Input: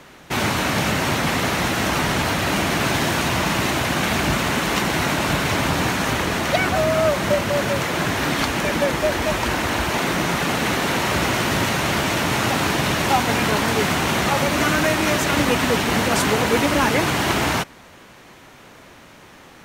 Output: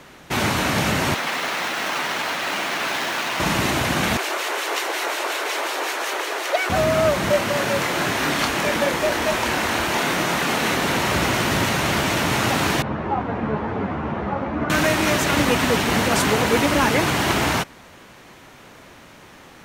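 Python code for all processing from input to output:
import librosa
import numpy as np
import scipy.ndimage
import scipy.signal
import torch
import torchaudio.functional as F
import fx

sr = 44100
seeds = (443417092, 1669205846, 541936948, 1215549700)

y = fx.chain(x, sr, fx.median_filter(points=5),
    fx.bessel_highpass(hz=270.0, order=2),
    fx.low_shelf(hz=440.0, db=-11.5), at=(1.14, 3.4))
y = fx.chain(y, sr, fx.steep_highpass(hz=350.0, slope=48),
    fx.harmonic_tremolo(hz=5.5, depth_pct=50, crossover_hz=1700.0), at=(4.17, 6.7))
y = fx.chain(y, sr, fx.low_shelf(hz=160.0, db=-9.5),
    fx.doubler(ms=27.0, db=-6.0), at=(7.3, 10.75))
y = fx.chain(y, sr, fx.lowpass(hz=1100.0, slope=12),
    fx.ensemble(), at=(12.82, 14.7))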